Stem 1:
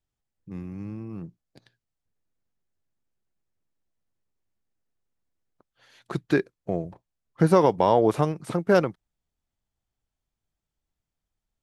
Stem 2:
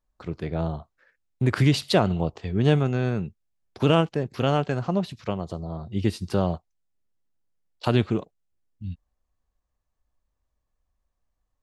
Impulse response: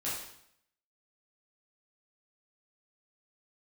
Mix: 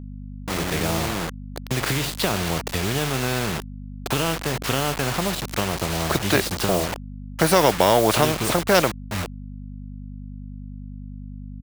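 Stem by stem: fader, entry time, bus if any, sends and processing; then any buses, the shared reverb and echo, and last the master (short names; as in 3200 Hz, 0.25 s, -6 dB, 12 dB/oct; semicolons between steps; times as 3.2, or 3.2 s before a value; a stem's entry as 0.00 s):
-0.5 dB, 0.00 s, no send, bell 610 Hz +10.5 dB 0.44 oct
+1.5 dB, 0.30 s, send -20 dB, de-esser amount 85%; harmonic-percussive split percussive -7 dB; compressor 6:1, threshold -28 dBFS, peak gain reduction 12.5 dB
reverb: on, RT60 0.70 s, pre-delay 6 ms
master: bit-crush 7-bit; hum 50 Hz, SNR 23 dB; spectral compressor 2:1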